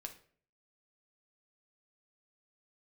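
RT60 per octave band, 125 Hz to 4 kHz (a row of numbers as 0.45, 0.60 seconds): 0.65, 0.55, 0.55, 0.45, 0.45, 0.35 seconds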